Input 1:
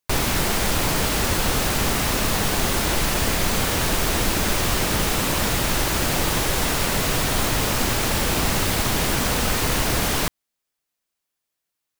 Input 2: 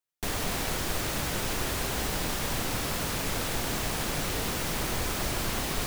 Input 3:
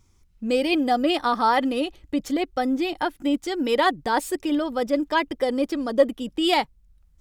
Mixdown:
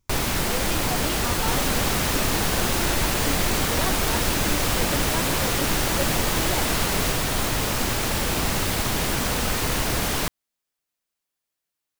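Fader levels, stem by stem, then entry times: -2.5 dB, +2.0 dB, -12.0 dB; 0.00 s, 1.25 s, 0.00 s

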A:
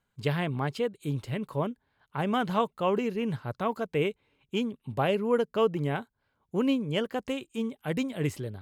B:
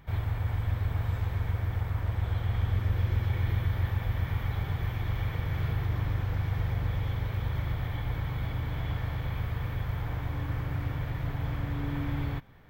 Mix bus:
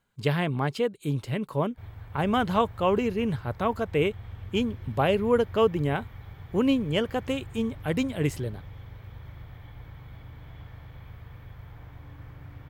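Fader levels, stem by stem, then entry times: +3.0 dB, -12.5 dB; 0.00 s, 1.70 s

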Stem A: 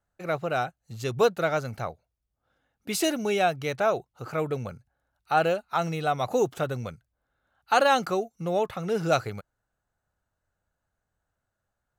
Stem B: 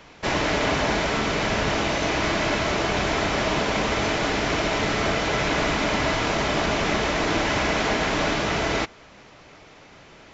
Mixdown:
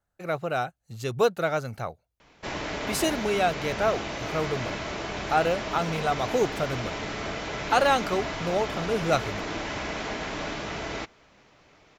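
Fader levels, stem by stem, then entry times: -0.5 dB, -9.5 dB; 0.00 s, 2.20 s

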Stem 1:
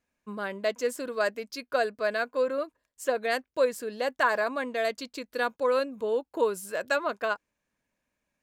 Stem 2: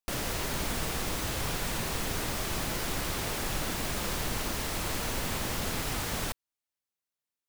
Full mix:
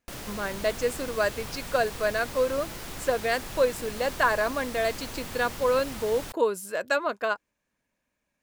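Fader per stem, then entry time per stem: +1.5 dB, -6.0 dB; 0.00 s, 0.00 s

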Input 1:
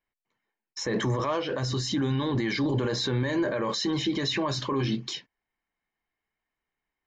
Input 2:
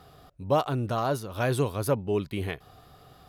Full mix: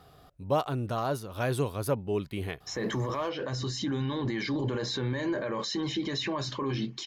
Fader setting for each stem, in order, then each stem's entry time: -4.0 dB, -3.0 dB; 1.90 s, 0.00 s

